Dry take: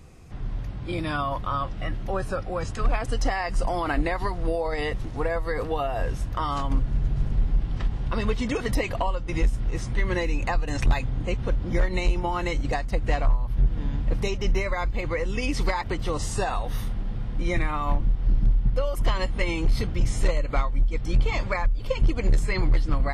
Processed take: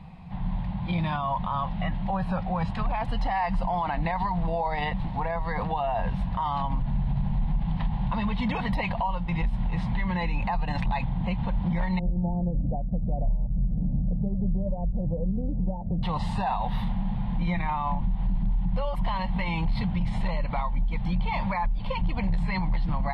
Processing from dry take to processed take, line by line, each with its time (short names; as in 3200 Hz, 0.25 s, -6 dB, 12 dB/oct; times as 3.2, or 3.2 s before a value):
11.99–16.03 steep low-pass 610 Hz 48 dB/oct
whole clip: EQ curve 120 Hz 0 dB, 180 Hz +15 dB, 270 Hz -5 dB, 390 Hz -13 dB, 910 Hz +14 dB, 1300 Hz -4 dB, 1900 Hz +2 dB, 4100 Hz +1 dB, 6100 Hz -22 dB, 9200 Hz -18 dB; limiter -19 dBFS